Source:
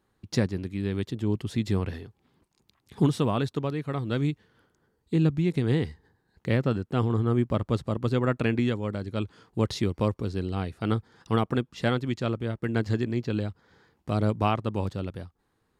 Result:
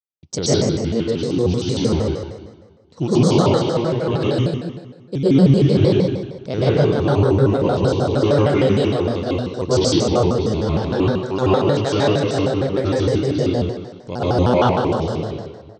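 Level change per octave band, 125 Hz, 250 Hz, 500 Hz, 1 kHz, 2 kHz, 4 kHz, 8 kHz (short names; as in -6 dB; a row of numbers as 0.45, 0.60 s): +8.0 dB, +9.5 dB, +13.5 dB, +10.0 dB, +6.0 dB, +12.5 dB, n/a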